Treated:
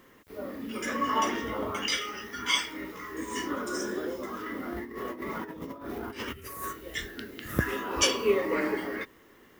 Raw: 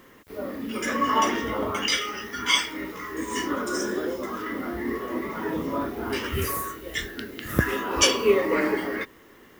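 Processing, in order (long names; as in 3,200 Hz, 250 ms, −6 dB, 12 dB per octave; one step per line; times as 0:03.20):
0:04.72–0:06.73: compressor whose output falls as the input rises −32 dBFS, ratio −0.5
level −5 dB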